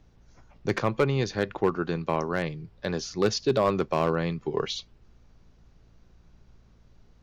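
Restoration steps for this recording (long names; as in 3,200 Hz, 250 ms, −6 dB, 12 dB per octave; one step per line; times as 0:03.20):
clipped peaks rebuilt −14.5 dBFS
hum removal 56.7 Hz, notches 4
downward expander −49 dBFS, range −21 dB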